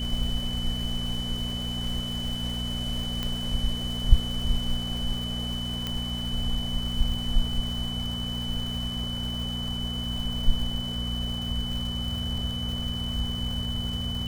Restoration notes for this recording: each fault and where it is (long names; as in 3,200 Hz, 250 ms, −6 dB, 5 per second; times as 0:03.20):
surface crackle 490 per second −36 dBFS
mains hum 60 Hz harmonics 4 −33 dBFS
whistle 3,000 Hz −33 dBFS
0:03.23: click −15 dBFS
0:05.87: click −15 dBFS